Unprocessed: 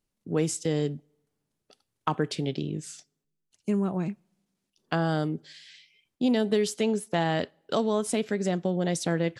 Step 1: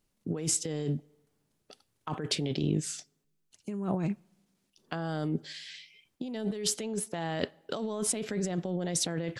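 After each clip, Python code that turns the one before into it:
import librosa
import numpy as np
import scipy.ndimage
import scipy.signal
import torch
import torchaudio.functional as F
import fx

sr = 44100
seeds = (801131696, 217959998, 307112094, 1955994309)

y = fx.over_compress(x, sr, threshold_db=-32.0, ratio=-1.0)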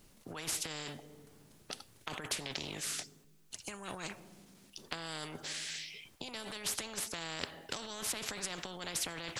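y = fx.spectral_comp(x, sr, ratio=4.0)
y = y * 10.0 ** (-6.0 / 20.0)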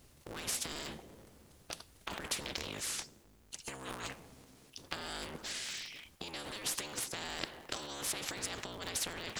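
y = fx.cycle_switch(x, sr, every=3, mode='inverted')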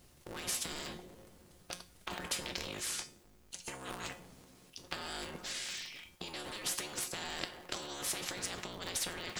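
y = fx.comb_fb(x, sr, f0_hz=180.0, decay_s=0.32, harmonics='all', damping=0.0, mix_pct=70)
y = y * 10.0 ** (8.0 / 20.0)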